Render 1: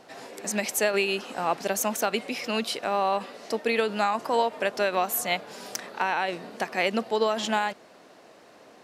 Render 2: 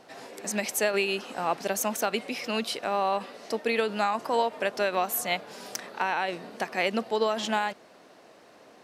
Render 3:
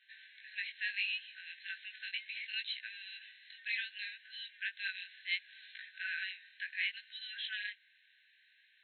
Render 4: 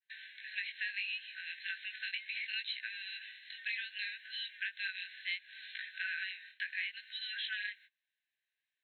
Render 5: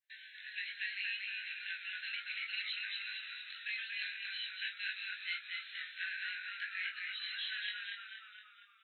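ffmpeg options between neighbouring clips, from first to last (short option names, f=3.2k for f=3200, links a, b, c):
-af "bandreject=f=7.1k:w=30,volume=-1.5dB"
-af "afftfilt=real='re*between(b*sr/4096,1500,4200)':imag='im*between(b*sr/4096,1500,4200)':win_size=4096:overlap=0.75,flanger=delay=16.5:depth=5.3:speed=0.68,volume=-2dB"
-af "agate=range=-29dB:threshold=-59dB:ratio=16:detection=peak,adynamicequalizer=threshold=0.00178:dfrequency=3200:dqfactor=2.9:tfrequency=3200:tqfactor=2.9:attack=5:release=100:ratio=0.375:range=2.5:mode=cutabove:tftype=bell,acompressor=threshold=-41dB:ratio=6,volume=6dB"
-filter_complex "[0:a]flanger=delay=18.5:depth=4.3:speed=0.76,highpass=1.5k,asplit=2[a][b];[b]asplit=7[c][d][e][f][g][h][i];[c]adelay=234,afreqshift=-63,volume=-3dB[j];[d]adelay=468,afreqshift=-126,volume=-8.5dB[k];[e]adelay=702,afreqshift=-189,volume=-14dB[l];[f]adelay=936,afreqshift=-252,volume=-19.5dB[m];[g]adelay=1170,afreqshift=-315,volume=-25.1dB[n];[h]adelay=1404,afreqshift=-378,volume=-30.6dB[o];[i]adelay=1638,afreqshift=-441,volume=-36.1dB[p];[j][k][l][m][n][o][p]amix=inputs=7:normalize=0[q];[a][q]amix=inputs=2:normalize=0,volume=1.5dB"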